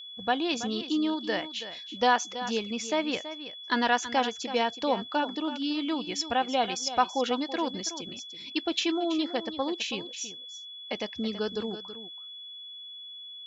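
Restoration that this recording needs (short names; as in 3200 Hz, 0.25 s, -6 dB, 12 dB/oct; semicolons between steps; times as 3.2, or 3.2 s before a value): notch 3400 Hz, Q 30; inverse comb 0.328 s -12.5 dB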